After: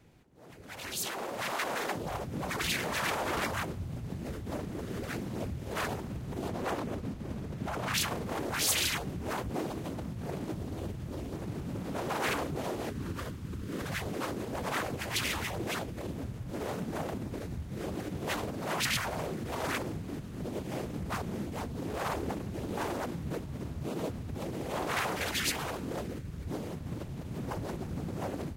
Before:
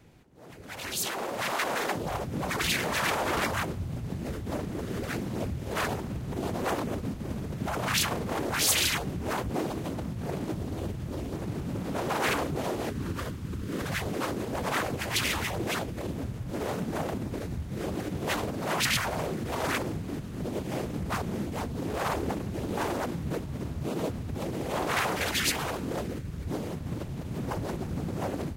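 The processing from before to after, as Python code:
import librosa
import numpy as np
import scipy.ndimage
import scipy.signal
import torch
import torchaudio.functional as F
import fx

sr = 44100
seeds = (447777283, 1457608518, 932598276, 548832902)

y = fx.high_shelf(x, sr, hz=7000.0, db=-5.5, at=(6.48, 7.94))
y = F.gain(torch.from_numpy(y), -4.0).numpy()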